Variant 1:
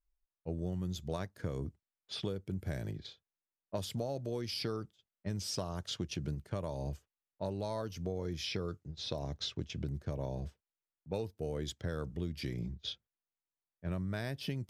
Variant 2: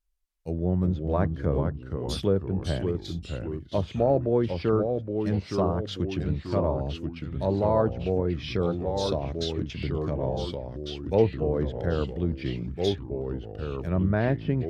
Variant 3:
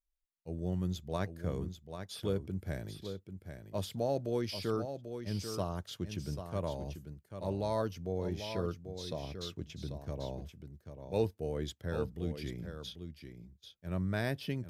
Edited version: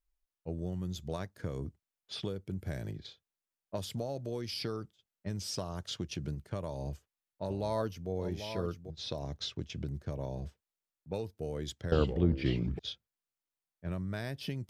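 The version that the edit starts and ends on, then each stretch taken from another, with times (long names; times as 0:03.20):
1
0:07.50–0:08.90: punch in from 3
0:11.92–0:12.79: punch in from 2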